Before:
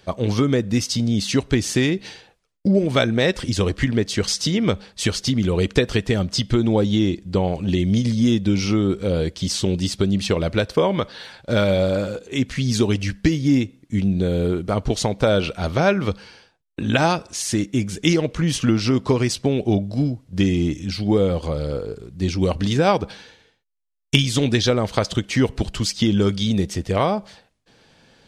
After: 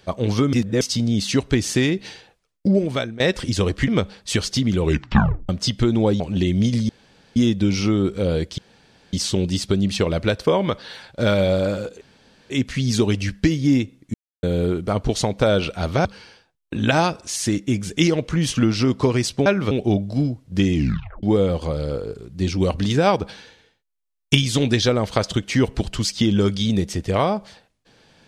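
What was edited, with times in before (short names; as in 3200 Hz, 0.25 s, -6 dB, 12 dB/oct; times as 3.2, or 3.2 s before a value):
0.53–0.81 reverse
2.73–3.2 fade out, to -19.5 dB
3.88–4.59 cut
5.52 tape stop 0.68 s
6.91–7.52 cut
8.21 insert room tone 0.47 s
9.43 insert room tone 0.55 s
12.31 insert room tone 0.49 s
13.95–14.24 mute
15.86–16.11 move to 19.52
20.55 tape stop 0.49 s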